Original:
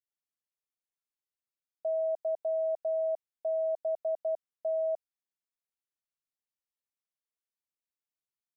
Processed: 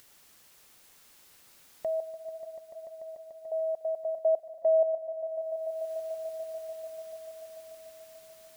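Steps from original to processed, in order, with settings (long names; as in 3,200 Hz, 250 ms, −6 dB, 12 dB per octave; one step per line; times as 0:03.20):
0:04.16–0:04.83: parametric band 470 Hz +10 dB 1.8 octaves
upward compression, threshold −31 dBFS
0:02.00–0:03.52: tuned comb filter 660 Hz, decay 0.48 s, mix 90%
echo that builds up and dies away 146 ms, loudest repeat 5, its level −15 dB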